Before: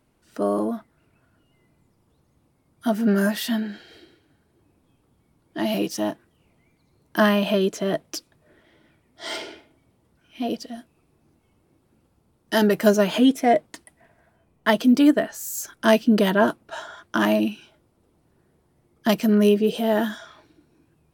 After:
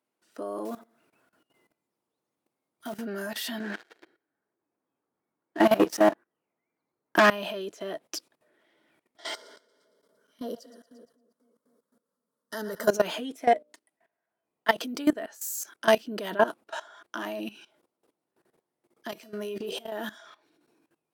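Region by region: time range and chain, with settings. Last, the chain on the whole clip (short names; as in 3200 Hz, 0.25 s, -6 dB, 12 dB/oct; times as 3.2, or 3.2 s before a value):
0.65–2.95 block floating point 5-bit + feedback echo 79 ms, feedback 36%, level -18 dB
3.6–7.3 resonant high shelf 2300 Hz -8 dB, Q 1.5 + sample leveller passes 3
9.34–12.89 fixed phaser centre 510 Hz, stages 8 + split-band echo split 600 Hz, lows 0.251 s, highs 0.115 s, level -11 dB
13.51–14.76 notches 60/120/180/240/300/360/420/480/540/600 Hz + upward expander, over -37 dBFS
19.11–19.92 bell 93 Hz -12 dB 0.72 oct + transient shaper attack -5 dB, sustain +10 dB + resonator 130 Hz, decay 0.46 s, harmonics odd, mix 70%
whole clip: HPF 340 Hz 12 dB/oct; level quantiser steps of 17 dB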